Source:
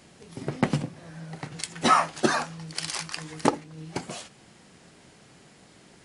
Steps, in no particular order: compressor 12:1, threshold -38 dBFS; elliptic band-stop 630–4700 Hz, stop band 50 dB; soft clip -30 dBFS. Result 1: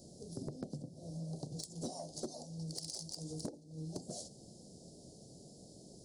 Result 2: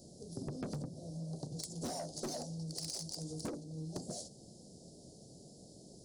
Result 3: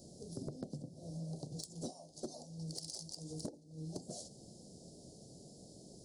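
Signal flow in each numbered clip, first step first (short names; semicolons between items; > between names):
elliptic band-stop > compressor > soft clip; elliptic band-stop > soft clip > compressor; compressor > elliptic band-stop > soft clip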